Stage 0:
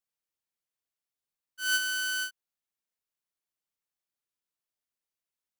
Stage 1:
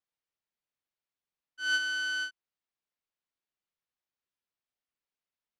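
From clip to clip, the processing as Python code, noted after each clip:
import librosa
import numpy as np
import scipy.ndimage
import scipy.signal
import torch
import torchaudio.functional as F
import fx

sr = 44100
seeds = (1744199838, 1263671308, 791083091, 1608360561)

y = scipy.signal.sosfilt(scipy.signal.butter(2, 4300.0, 'lowpass', fs=sr, output='sos'), x)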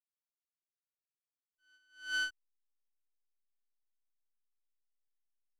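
y = fx.backlash(x, sr, play_db=-50.0)
y = fx.attack_slew(y, sr, db_per_s=150.0)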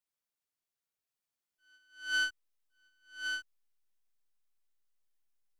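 y = x + 10.0 ** (-5.5 / 20.0) * np.pad(x, (int(1115 * sr / 1000.0), 0))[:len(x)]
y = F.gain(torch.from_numpy(y), 3.5).numpy()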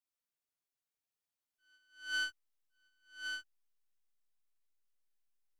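y = fx.doubler(x, sr, ms=15.0, db=-14.0)
y = F.gain(torch.from_numpy(y), -4.0).numpy()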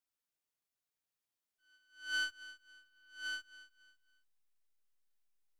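y = fx.echo_feedback(x, sr, ms=275, feedback_pct=32, wet_db=-16.5)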